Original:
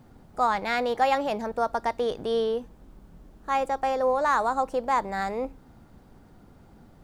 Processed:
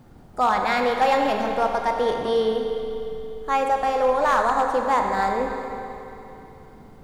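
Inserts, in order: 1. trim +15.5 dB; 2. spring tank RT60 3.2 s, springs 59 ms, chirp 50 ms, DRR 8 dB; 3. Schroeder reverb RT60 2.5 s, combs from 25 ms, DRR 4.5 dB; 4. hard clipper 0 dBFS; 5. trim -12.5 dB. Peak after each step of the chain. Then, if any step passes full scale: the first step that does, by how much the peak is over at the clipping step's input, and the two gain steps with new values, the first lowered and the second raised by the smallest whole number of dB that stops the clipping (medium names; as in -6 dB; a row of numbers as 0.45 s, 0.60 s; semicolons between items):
+4.0 dBFS, +4.5 dBFS, +5.5 dBFS, 0.0 dBFS, -12.5 dBFS; step 1, 5.5 dB; step 1 +9.5 dB, step 5 -6.5 dB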